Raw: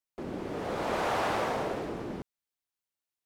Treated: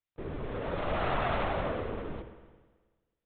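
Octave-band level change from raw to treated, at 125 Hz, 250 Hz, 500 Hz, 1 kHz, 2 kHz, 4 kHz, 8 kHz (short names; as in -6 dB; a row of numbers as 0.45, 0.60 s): +4.5 dB, -2.5 dB, -1.0 dB, -2.0 dB, -1.0 dB, -2.5 dB, under -30 dB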